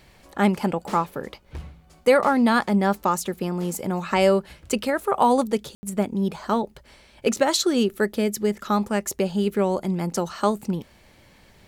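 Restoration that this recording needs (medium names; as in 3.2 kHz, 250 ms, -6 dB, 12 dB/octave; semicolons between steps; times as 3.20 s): room tone fill 5.75–5.83 s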